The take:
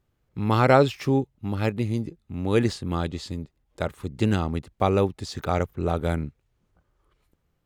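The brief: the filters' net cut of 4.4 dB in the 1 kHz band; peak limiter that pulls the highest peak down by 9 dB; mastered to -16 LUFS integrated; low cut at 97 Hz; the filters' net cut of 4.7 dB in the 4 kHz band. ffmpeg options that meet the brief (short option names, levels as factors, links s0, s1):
-af "highpass=97,equalizer=f=1000:t=o:g=-6,equalizer=f=4000:t=o:g=-5.5,volume=4.73,alimiter=limit=0.944:level=0:latency=1"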